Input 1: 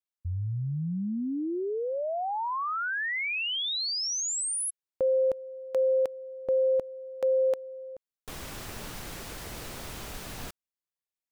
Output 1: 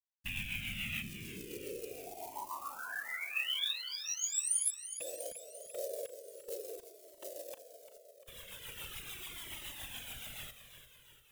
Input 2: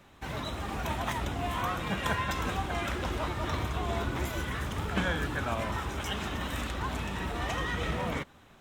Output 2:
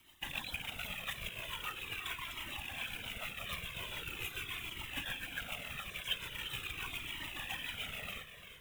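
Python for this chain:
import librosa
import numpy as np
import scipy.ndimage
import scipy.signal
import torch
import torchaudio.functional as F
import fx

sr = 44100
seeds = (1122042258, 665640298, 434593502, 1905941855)

p1 = fx.rattle_buzz(x, sr, strikes_db=-35.0, level_db=-24.0)
p2 = fx.dereverb_blind(p1, sr, rt60_s=0.61)
p3 = fx.high_shelf_res(p2, sr, hz=4100.0, db=-7.5, q=3.0)
p4 = fx.notch(p3, sr, hz=4300.0, q=5.7)
p5 = fx.rider(p4, sr, range_db=4, speed_s=0.5)
p6 = fx.whisperise(p5, sr, seeds[0])
p7 = fx.quant_companded(p6, sr, bits=6)
p8 = fx.rotary(p7, sr, hz=7.0)
p9 = librosa.effects.preemphasis(p8, coef=0.9, zi=[0.0])
p10 = p9 + fx.echo_feedback(p9, sr, ms=346, feedback_pct=56, wet_db=-11.0, dry=0)
p11 = fx.comb_cascade(p10, sr, direction='falling', hz=0.42)
y = p11 * 10.0 ** (8.5 / 20.0)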